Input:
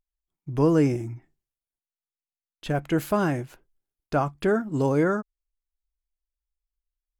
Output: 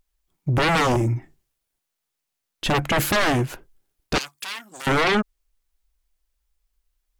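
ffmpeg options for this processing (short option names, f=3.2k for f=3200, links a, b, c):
-filter_complex "[0:a]aeval=exprs='0.316*sin(PI/2*6.31*val(0)/0.316)':c=same,asettb=1/sr,asplit=3[a][b][c];[a]atrim=end=4.184[d];[b]atrim=start=4.18:end=4.87,asetpts=PTS-STARTPTS,afade=t=in:d=0.004:c=qsin,afade=t=out:st=0.686:d=0.004:c=qsin,aderivative[e];[c]atrim=start=4.866[f];[d][e]acrossfade=d=0.004:c1=hsin:c2=qsin[g];[g][f]acrossfade=d=0.004:c1=qsin:c2=hsin,volume=-6dB"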